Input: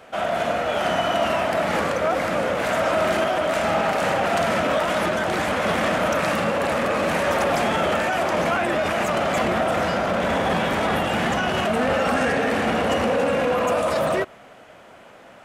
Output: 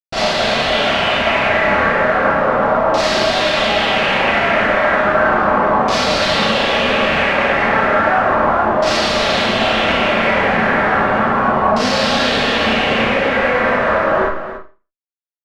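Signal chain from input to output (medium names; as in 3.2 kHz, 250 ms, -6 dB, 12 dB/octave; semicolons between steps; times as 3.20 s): Schmitt trigger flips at -34 dBFS; LFO low-pass saw down 0.34 Hz 980–5100 Hz; on a send: loudspeakers at several distances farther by 10 m -11 dB, 97 m -11 dB; on the sum: Schroeder reverb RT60 0.33 s, combs from 28 ms, DRR -5.5 dB; trim -1.5 dB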